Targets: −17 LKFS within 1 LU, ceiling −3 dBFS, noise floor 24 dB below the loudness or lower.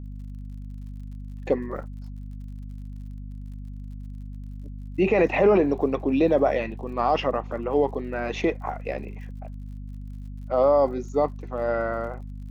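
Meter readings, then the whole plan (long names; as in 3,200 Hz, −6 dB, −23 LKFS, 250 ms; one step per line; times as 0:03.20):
crackle rate 55 per second; mains hum 50 Hz; hum harmonics up to 250 Hz; level of the hum −34 dBFS; integrated loudness −24.5 LKFS; sample peak −8.5 dBFS; target loudness −17.0 LKFS
→ click removal
hum removal 50 Hz, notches 5
level +7.5 dB
brickwall limiter −3 dBFS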